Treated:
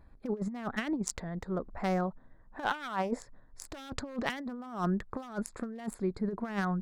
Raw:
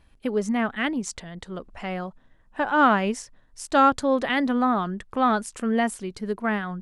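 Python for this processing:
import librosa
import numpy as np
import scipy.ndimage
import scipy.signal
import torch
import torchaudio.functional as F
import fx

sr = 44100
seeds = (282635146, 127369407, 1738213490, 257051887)

y = fx.wiener(x, sr, points=15)
y = fx.lowpass(y, sr, hz=6200.0, slope=12, at=(3.85, 4.25), fade=0.02)
y = 10.0 ** (-15.5 / 20.0) * (np.abs((y / 10.0 ** (-15.5 / 20.0) + 3.0) % 4.0 - 2.0) - 1.0)
y = fx.high_shelf(y, sr, hz=4600.0, db=3.5)
y = fx.over_compress(y, sr, threshold_db=-29.0, ratio=-0.5)
y = fx.peak_eq(y, sr, hz=fx.line((2.64, 3300.0), (3.18, 500.0)), db=13.5, octaves=1.1, at=(2.64, 3.18), fade=0.02)
y = y * librosa.db_to_amplitude(-4.0)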